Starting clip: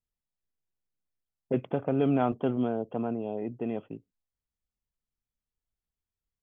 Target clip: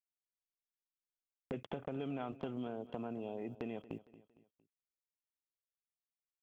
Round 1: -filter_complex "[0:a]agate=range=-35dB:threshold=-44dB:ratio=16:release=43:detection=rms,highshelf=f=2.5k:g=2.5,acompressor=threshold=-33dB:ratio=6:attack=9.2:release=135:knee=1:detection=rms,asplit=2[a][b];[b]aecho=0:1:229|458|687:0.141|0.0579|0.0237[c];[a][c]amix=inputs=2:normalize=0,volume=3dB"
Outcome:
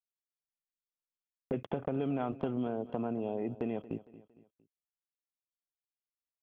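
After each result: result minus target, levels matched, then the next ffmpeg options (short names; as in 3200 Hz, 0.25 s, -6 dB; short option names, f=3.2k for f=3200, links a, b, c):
compressor: peak gain reduction -8 dB; 4000 Hz band -7.5 dB
-filter_complex "[0:a]agate=range=-35dB:threshold=-44dB:ratio=16:release=43:detection=rms,highshelf=f=2.5k:g=2.5,acompressor=threshold=-42dB:ratio=6:attack=9.2:release=135:knee=1:detection=rms,asplit=2[a][b];[b]aecho=0:1:229|458|687:0.141|0.0579|0.0237[c];[a][c]amix=inputs=2:normalize=0,volume=3dB"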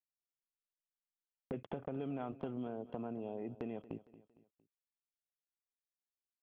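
4000 Hz band -7.0 dB
-filter_complex "[0:a]agate=range=-35dB:threshold=-44dB:ratio=16:release=43:detection=rms,highshelf=f=2.5k:g=14.5,acompressor=threshold=-42dB:ratio=6:attack=9.2:release=135:knee=1:detection=rms,asplit=2[a][b];[b]aecho=0:1:229|458|687:0.141|0.0579|0.0237[c];[a][c]amix=inputs=2:normalize=0,volume=3dB"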